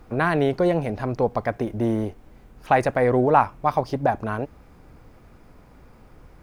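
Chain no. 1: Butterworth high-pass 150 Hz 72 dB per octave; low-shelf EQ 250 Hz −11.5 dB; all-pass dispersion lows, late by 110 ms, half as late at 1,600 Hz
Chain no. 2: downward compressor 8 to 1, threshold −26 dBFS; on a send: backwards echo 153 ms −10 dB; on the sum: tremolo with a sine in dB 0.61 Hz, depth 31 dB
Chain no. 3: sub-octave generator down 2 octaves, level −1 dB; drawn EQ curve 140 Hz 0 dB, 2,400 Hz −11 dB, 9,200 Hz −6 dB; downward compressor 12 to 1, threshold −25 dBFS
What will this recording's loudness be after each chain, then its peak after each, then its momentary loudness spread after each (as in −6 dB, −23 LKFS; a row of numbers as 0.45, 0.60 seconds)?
−25.5, −35.0, −32.0 LKFS; −4.0, −18.5, −14.0 dBFS; 12, 21, 21 LU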